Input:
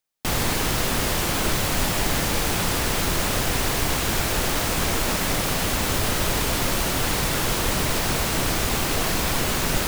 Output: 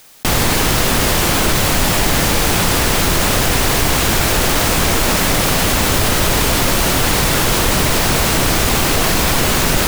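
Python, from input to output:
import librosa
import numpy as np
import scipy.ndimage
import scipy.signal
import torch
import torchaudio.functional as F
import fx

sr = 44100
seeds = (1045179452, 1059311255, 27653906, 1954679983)

y = fx.env_flatten(x, sr, amount_pct=50)
y = F.gain(torch.from_numpy(y), 6.5).numpy()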